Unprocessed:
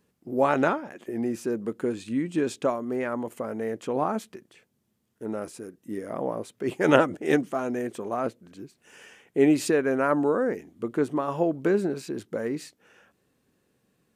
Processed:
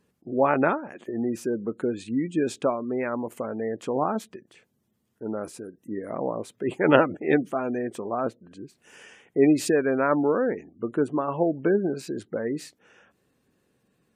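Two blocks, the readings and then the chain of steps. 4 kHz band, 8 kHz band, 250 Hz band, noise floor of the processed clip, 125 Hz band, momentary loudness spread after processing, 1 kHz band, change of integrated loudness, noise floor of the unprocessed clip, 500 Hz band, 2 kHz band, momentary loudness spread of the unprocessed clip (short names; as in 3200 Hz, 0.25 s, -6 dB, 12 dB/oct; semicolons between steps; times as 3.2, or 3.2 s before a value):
-1.0 dB, 0.0 dB, +1.0 dB, -72 dBFS, +1.0 dB, 14 LU, +1.0 dB, +1.0 dB, -73 dBFS, +1.0 dB, +0.5 dB, 14 LU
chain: spectral gate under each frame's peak -30 dB strong; gain +1 dB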